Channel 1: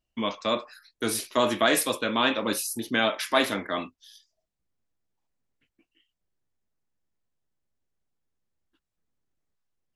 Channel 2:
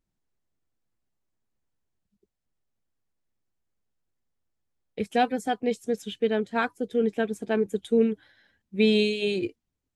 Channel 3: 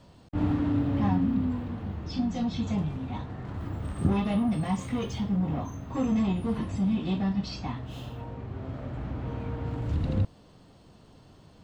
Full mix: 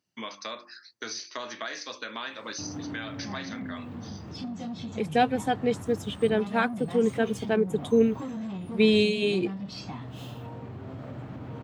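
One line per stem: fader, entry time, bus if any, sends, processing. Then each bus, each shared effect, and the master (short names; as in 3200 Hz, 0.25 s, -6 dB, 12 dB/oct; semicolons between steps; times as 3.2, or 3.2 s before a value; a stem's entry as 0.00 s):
+2.5 dB, 0.00 s, bus A, no send, rippled Chebyshev low-pass 6300 Hz, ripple 9 dB; tone controls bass -4 dB, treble +12 dB; notches 50/100/150/200/250/300/350 Hz
+0.5 dB, 0.00 s, no bus, no send, dry
+2.0 dB, 2.25 s, bus A, no send, soft clip -24.5 dBFS, distortion -13 dB
bus A: 0.0 dB, high shelf 8500 Hz +4.5 dB; compressor 5:1, threshold -34 dBFS, peak gain reduction 14.5 dB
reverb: off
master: HPF 100 Hz 24 dB/oct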